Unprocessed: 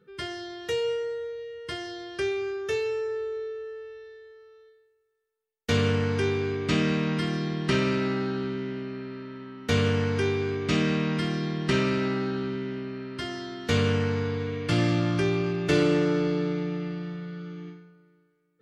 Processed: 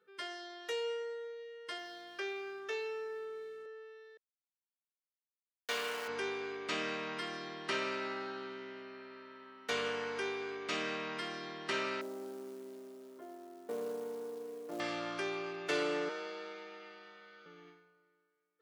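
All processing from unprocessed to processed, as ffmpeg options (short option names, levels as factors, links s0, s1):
-filter_complex "[0:a]asettb=1/sr,asplit=3[s0][s1][s2];[s0]atrim=end=1.784[s3];[s1]atrim=start=1.78:end=3.66,asetpts=PTS-STARTPTS,afade=t=in:d=0.004:c=qsin,afade=t=out:st=1.876:d=0.004:c=qsin,highpass=270,lowpass=5600,aeval=exprs='sgn(val(0))*max(abs(val(0))-0.0015,0)':c=same,aeval=exprs='val(0)+0.00501*(sin(2*PI*60*n/s)+sin(2*PI*2*60*n/s)/2+sin(2*PI*3*60*n/s)/3+sin(2*PI*4*60*n/s)/4+sin(2*PI*5*60*n/s)/5)':c=same[s4];[s2]atrim=start=3.656[s5];[s3][s4]acrossfade=d=0.004:c1=hsin:c2=qsin[s6];[s6][s5]acrossfade=d=0.004:c1=qsin:c2=hsin,asettb=1/sr,asplit=3[s7][s8][s9];[s7]atrim=end=4.174[s10];[s8]atrim=start=4.17:end=6.08,asetpts=PTS-STARTPTS,afade=t=in:d=0.004:c=qsin,afade=t=out:st=1.906:d=0.004:c=qsin,aeval=exprs='val(0)*gte(abs(val(0)),0.0266)':c=same,highpass=f=530:p=1[s11];[s9]atrim=start=6.076[s12];[s10][s11]acrossfade=d=0.004:c1=hsin:c2=qsin[s13];[s13][s12]acrossfade=d=0.004:c1=qsin:c2=hsin,asettb=1/sr,asplit=3[s14][s15][s16];[s14]atrim=end=12.014[s17];[s15]atrim=start=12.01:end=14.8,asetpts=PTS-STARTPTS,afade=t=in:d=0.004:c=qsin,afade=t=out:st=2.786:d=0.004:c=qsin,asuperpass=centerf=360:order=4:qfactor=0.76,acrusher=bits=6:mode=log:mix=0:aa=0.000001[s18];[s16]atrim=start=14.796[s19];[s17][s18]acrossfade=d=0.004:c1=hsin:c2=qsin[s20];[s20][s19]acrossfade=d=0.004:c1=qsin:c2=hsin,asettb=1/sr,asplit=3[s21][s22][s23];[s21]atrim=end=16.094[s24];[s22]atrim=start=16.09:end=17.46,asetpts=PTS-STARTPTS,afade=t=in:d=0.004:c=qsin,afade=t=out:st=1.366:d=0.004:c=qsin,highpass=f=810:p=1,afreqshift=29[s25];[s23]atrim=start=17.456[s26];[s24][s25]acrossfade=d=0.004:c1=hsin:c2=qsin[s27];[s27][s26]acrossfade=d=0.004:c1=qsin:c2=hsin,highpass=510,equalizer=f=900:t=o:w=1.8:g=3,volume=0.422"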